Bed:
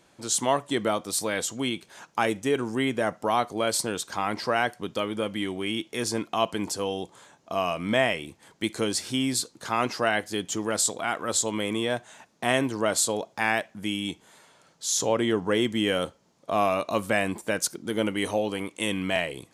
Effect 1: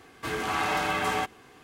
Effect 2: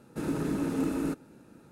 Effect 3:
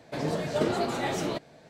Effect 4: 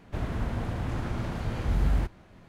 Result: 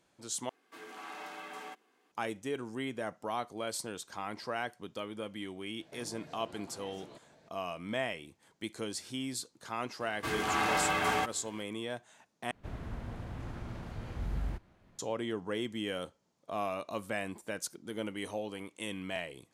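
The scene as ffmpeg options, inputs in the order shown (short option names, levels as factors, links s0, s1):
-filter_complex "[1:a]asplit=2[s0][s1];[0:a]volume=0.266[s2];[s0]highpass=f=220:w=0.5412,highpass=f=220:w=1.3066[s3];[3:a]acompressor=threshold=0.01:ratio=6:attack=3.2:release=140:knee=1:detection=peak[s4];[s2]asplit=3[s5][s6][s7];[s5]atrim=end=0.494[s8];[s3]atrim=end=1.63,asetpts=PTS-STARTPTS,volume=0.133[s9];[s6]atrim=start=2.116:end=12.514[s10];[4:a]atrim=end=2.48,asetpts=PTS-STARTPTS,volume=0.299[s11];[s7]atrim=start=14.986[s12];[s4]atrim=end=1.69,asetpts=PTS-STARTPTS,volume=0.355,afade=t=in:d=0.004:c=hsin,afade=t=out:st=1.686:d=0.004:c=hsin,adelay=5800[s13];[s1]atrim=end=1.63,asetpts=PTS-STARTPTS,volume=0.75,afade=t=in:d=0.004:c=hsin,afade=t=out:st=1.626:d=0.004:c=hsin,adelay=10000[s14];[s8][s9]acrossfade=d=0.004:c1=hsin:c2=hsin[s15];[s15][s10]acrossfade=d=0.004:c1=hsin:c2=hsin[s16];[s16][s11]acrossfade=d=0.004:c1=hsin:c2=hsin[s17];[s17][s12]acrossfade=d=0.004:c1=hsin:c2=hsin[s18];[s18][s13][s14]amix=inputs=3:normalize=0"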